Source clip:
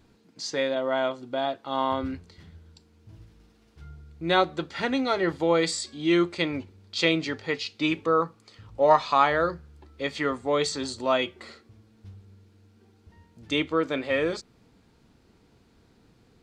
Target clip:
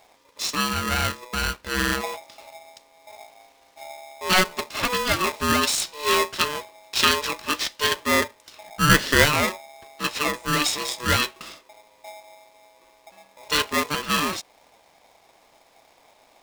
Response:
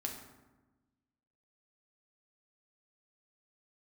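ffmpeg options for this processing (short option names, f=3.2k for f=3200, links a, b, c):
-af "equalizer=f=330:w=0.34:g=-8,aeval=exprs='val(0)*sgn(sin(2*PI*740*n/s))':c=same,volume=7.5dB"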